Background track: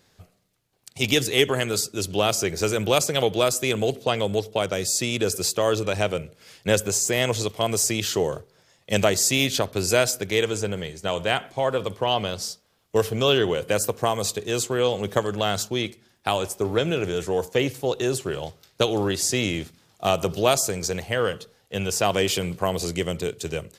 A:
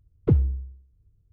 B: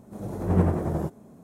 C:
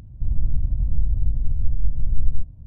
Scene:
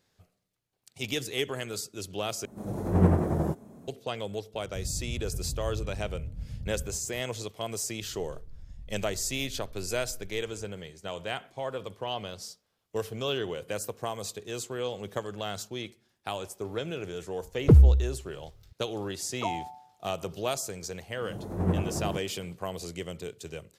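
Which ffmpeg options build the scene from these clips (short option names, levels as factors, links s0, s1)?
-filter_complex "[2:a]asplit=2[s0][s1];[3:a]asplit=2[s2][s3];[1:a]asplit=2[s4][s5];[0:a]volume=0.282[s6];[s2]highpass=79[s7];[s3]acompressor=threshold=0.0355:ratio=6:attack=3.2:release=140:knee=1:detection=peak[s8];[s4]alimiter=level_in=5.62:limit=0.891:release=50:level=0:latency=1[s9];[s5]aeval=exprs='val(0)*sin(2*PI*810*n/s)':c=same[s10];[s6]asplit=2[s11][s12];[s11]atrim=end=2.454[s13];[s0]atrim=end=1.43[s14];[s12]atrim=start=3.876[s15];[s7]atrim=end=2.66,asetpts=PTS-STARTPTS,volume=0.562,afade=t=in:d=0.004:c=hsin,afade=t=out:st=2.656:d=0.004:c=hsin,adelay=4540[s16];[s8]atrim=end=2.66,asetpts=PTS-STARTPTS,volume=0.251,afade=t=in:d=0.004:c=hsin,afade=t=out:st=2.656:d=0.004:c=hsin,adelay=7990[s17];[s9]atrim=end=1.32,asetpts=PTS-STARTPTS,volume=0.422,afade=t=in:d=0.004:c=hsin,afade=t=out:st=1.316:d=0.004:c=hsin,adelay=17410[s18];[s10]atrim=end=1.32,asetpts=PTS-STARTPTS,volume=0.282,afade=t=in:d=0.004:c=hsin,afade=t=out:st=1.316:d=0.004:c=hsin,adelay=19140[s19];[s1]atrim=end=1.43,asetpts=PTS-STARTPTS,volume=0.531,afade=t=in:d=0.004:c=hsin,afade=t=out:st=1.426:d=0.004:c=hsin,adelay=21100[s20];[s13][s14]acrossfade=d=0.004:c1=hsin:c2=hsin[s21];[s21][s15]acrossfade=d=0.004:c1=hsin:c2=hsin[s22];[s22][s16][s17][s18][s19][s20]amix=inputs=6:normalize=0"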